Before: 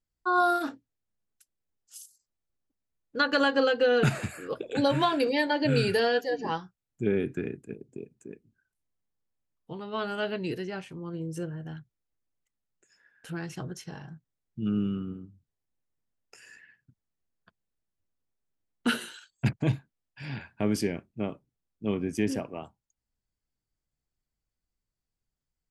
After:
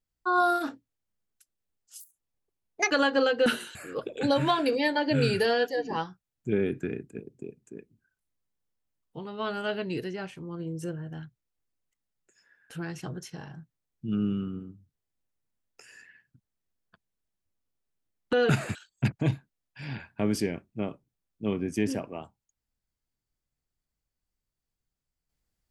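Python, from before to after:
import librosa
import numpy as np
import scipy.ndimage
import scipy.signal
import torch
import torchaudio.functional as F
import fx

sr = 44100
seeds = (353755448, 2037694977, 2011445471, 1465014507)

y = fx.edit(x, sr, fx.speed_span(start_s=2.0, length_s=1.32, speed=1.45),
    fx.swap(start_s=3.87, length_s=0.42, other_s=18.87, other_length_s=0.29), tone=tone)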